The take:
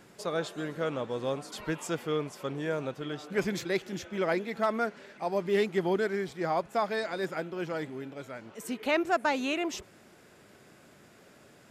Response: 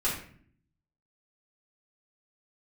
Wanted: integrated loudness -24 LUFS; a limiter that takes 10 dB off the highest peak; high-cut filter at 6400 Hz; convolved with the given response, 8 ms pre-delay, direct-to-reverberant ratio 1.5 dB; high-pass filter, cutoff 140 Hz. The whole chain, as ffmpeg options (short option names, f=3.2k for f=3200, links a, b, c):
-filter_complex "[0:a]highpass=140,lowpass=6.4k,alimiter=level_in=1dB:limit=-24dB:level=0:latency=1,volume=-1dB,asplit=2[a][b];[1:a]atrim=start_sample=2205,adelay=8[c];[b][c]afir=irnorm=-1:irlink=0,volume=-10dB[d];[a][d]amix=inputs=2:normalize=0,volume=10dB"